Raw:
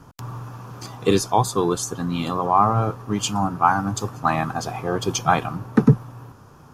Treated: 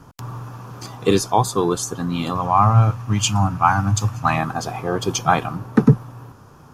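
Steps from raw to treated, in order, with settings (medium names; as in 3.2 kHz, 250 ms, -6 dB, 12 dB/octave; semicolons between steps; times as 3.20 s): 2.35–4.38 s: fifteen-band graphic EQ 100 Hz +11 dB, 400 Hz -11 dB, 2.5 kHz +6 dB, 6.3 kHz +4 dB; trim +1.5 dB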